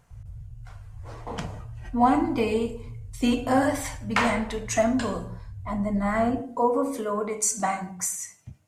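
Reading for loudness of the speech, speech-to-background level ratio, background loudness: -26.0 LUFS, 16.0 dB, -42.0 LUFS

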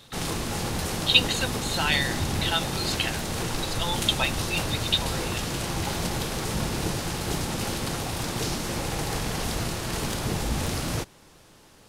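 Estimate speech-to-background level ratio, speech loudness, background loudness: 2.5 dB, -26.5 LUFS, -29.0 LUFS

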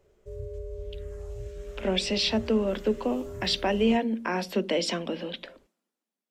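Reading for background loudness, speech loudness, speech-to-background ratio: -41.0 LUFS, -27.5 LUFS, 13.5 dB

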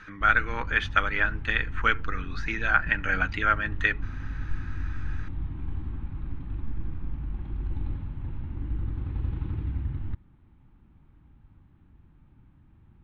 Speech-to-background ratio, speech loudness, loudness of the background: 10.0 dB, -26.0 LUFS, -36.0 LUFS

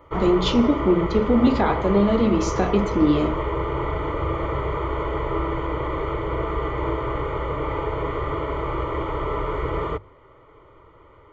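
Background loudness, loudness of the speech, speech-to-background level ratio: -26.5 LUFS, -20.5 LUFS, 6.0 dB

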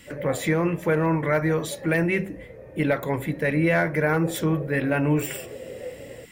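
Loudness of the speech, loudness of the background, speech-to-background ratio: -24.0 LUFS, -39.5 LUFS, 15.5 dB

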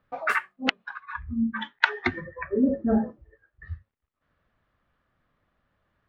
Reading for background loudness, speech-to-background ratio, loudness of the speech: -43.0 LUFS, 15.5 dB, -27.5 LUFS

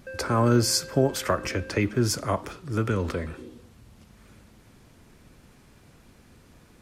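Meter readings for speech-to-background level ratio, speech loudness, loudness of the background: 17.5 dB, -25.5 LUFS, -43.0 LUFS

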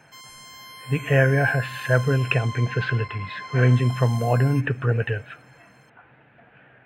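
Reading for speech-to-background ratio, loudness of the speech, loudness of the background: 16.0 dB, -22.5 LUFS, -38.5 LUFS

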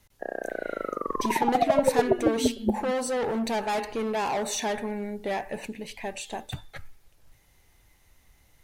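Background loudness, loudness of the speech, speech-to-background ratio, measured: -27.5 LUFS, -30.0 LUFS, -2.5 dB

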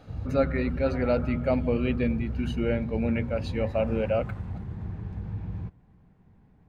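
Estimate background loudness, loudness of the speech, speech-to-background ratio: -35.0 LUFS, -28.0 LUFS, 7.0 dB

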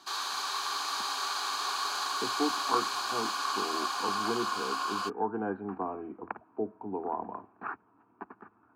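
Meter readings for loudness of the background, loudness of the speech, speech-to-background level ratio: -32.0 LUFS, -37.0 LUFS, -5.0 dB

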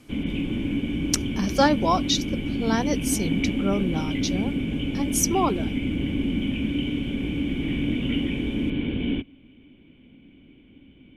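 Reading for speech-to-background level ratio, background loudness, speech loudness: 1.0 dB, -27.0 LUFS, -26.0 LUFS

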